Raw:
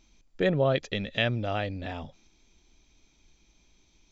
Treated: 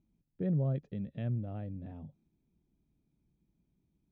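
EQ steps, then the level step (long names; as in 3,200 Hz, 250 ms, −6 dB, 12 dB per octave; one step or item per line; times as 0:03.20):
resonant band-pass 150 Hz, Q 1.8
0.0 dB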